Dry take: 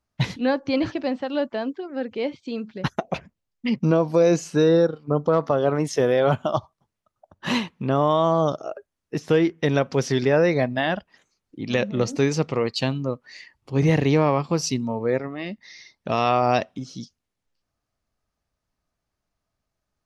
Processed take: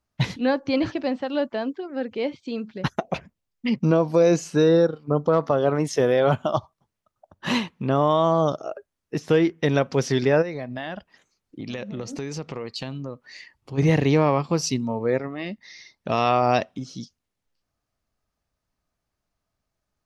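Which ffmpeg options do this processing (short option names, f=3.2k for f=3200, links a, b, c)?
-filter_complex "[0:a]asplit=3[a][b][c];[a]afade=t=out:st=10.41:d=0.02[d];[b]acompressor=threshold=-29dB:ratio=4:attack=3.2:release=140:knee=1:detection=peak,afade=t=in:st=10.41:d=0.02,afade=t=out:st=13.77:d=0.02[e];[c]afade=t=in:st=13.77:d=0.02[f];[d][e][f]amix=inputs=3:normalize=0"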